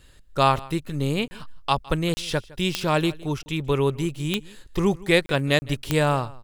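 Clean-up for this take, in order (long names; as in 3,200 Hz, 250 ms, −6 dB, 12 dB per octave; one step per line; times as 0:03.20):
click removal
repair the gap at 0:01.28/0:02.14/0:03.43/0:05.26/0:05.59, 30 ms
echo removal 161 ms −21.5 dB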